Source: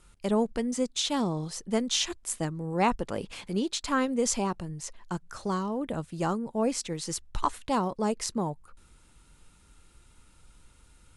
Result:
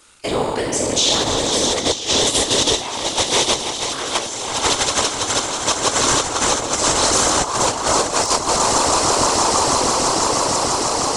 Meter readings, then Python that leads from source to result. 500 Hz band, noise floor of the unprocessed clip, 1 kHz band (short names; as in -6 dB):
+11.5 dB, -59 dBFS, +14.5 dB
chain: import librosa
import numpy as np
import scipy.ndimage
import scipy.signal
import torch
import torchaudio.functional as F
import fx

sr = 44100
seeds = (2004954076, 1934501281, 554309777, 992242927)

p1 = fx.spec_trails(x, sr, decay_s=1.05)
p2 = scipy.signal.sosfilt(scipy.signal.butter(2, 120.0, 'highpass', fs=sr, output='sos'), p1)
p3 = fx.echo_swell(p2, sr, ms=162, loudest=8, wet_db=-6.5)
p4 = fx.level_steps(p3, sr, step_db=11)
p5 = p3 + (p4 * 10.0 ** (1.5 / 20.0))
p6 = scipy.signal.sosfilt(scipy.signal.butter(2, 7500.0, 'lowpass', fs=sr, output='sos'), p5)
p7 = fx.high_shelf(p6, sr, hz=3500.0, db=9.0)
p8 = fx.quant_float(p7, sr, bits=6)
p9 = fx.over_compress(p8, sr, threshold_db=-18.0, ratio=-0.5)
p10 = fx.whisperise(p9, sr, seeds[0])
p11 = fx.peak_eq(p10, sr, hz=180.0, db=-12.5, octaves=1.0)
y = p11 * 10.0 ** (1.5 / 20.0)